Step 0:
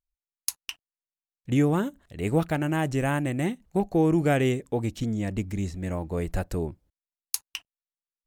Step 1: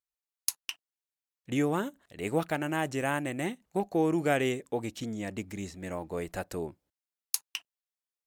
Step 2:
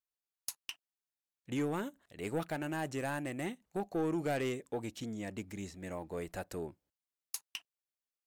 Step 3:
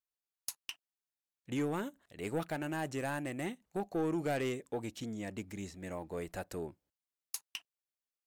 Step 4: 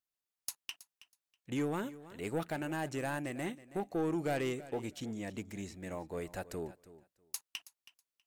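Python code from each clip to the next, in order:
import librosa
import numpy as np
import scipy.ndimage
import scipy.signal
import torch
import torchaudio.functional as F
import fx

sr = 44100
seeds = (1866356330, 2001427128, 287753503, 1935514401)

y1 = fx.highpass(x, sr, hz=400.0, slope=6)
y1 = F.gain(torch.from_numpy(y1), -1.0).numpy()
y2 = 10.0 ** (-22.0 / 20.0) * np.tanh(y1 / 10.0 ** (-22.0 / 20.0))
y2 = F.gain(torch.from_numpy(y2), -4.5).numpy()
y3 = y2
y4 = fx.echo_feedback(y3, sr, ms=323, feedback_pct=17, wet_db=-17.0)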